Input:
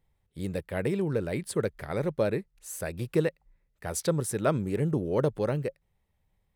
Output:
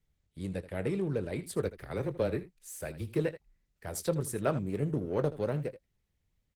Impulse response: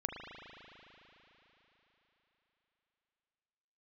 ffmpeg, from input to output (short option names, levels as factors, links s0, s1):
-filter_complex "[0:a]acrossover=split=230|1100|4100[s0][s1][s2][s3];[s1]adynamicsmooth=sensitivity=2.5:basefreq=740[s4];[s0][s4][s2][s3]amix=inputs=4:normalize=0,asplit=3[s5][s6][s7];[s5]afade=t=out:st=1.61:d=0.02[s8];[s6]afreqshift=-14,afade=t=in:st=1.61:d=0.02,afade=t=out:st=3.18:d=0.02[s9];[s7]afade=t=in:st=3.18:d=0.02[s10];[s8][s9][s10]amix=inputs=3:normalize=0,asplit=3[s11][s12][s13];[s11]afade=t=out:st=4.56:d=0.02[s14];[s12]aeval=exprs='0.224*(cos(1*acos(clip(val(0)/0.224,-1,1)))-cos(1*PI/2))+0.00398*(cos(3*acos(clip(val(0)/0.224,-1,1)))-cos(3*PI/2))+0.00355*(cos(7*acos(clip(val(0)/0.224,-1,1)))-cos(7*PI/2))':c=same,afade=t=in:st=4.56:d=0.02,afade=t=out:st=5.39:d=0.02[s15];[s13]afade=t=in:st=5.39:d=0.02[s16];[s14][s15][s16]amix=inputs=3:normalize=0,aecho=1:1:21|79:0.211|0.178,volume=0.668" -ar 48000 -c:a libopus -b:a 16k